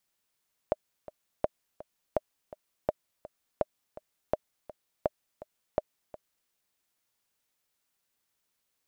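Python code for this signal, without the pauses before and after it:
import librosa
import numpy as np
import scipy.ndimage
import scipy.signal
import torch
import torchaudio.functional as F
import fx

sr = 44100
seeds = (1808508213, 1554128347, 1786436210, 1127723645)

y = fx.click_track(sr, bpm=166, beats=2, bars=8, hz=612.0, accent_db=17.5, level_db=-12.0)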